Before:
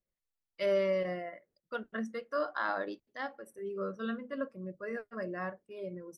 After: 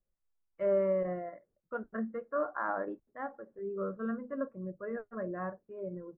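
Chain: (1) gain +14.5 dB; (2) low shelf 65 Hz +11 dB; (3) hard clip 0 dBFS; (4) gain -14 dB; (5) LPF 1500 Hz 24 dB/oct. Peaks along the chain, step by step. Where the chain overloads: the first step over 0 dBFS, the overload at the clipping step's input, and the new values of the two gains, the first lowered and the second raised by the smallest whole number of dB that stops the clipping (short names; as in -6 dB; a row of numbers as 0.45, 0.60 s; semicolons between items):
-5.5, -5.5, -5.5, -19.5, -20.0 dBFS; no overload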